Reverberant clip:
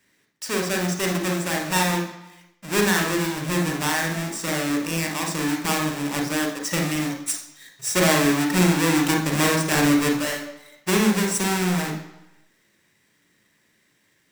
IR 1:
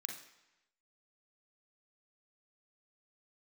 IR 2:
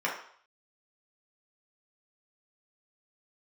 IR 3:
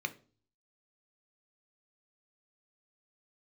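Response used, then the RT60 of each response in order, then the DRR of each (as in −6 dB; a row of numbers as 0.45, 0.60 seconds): 1; 0.95, 0.60, 0.40 seconds; 1.5, −4.5, 8.0 decibels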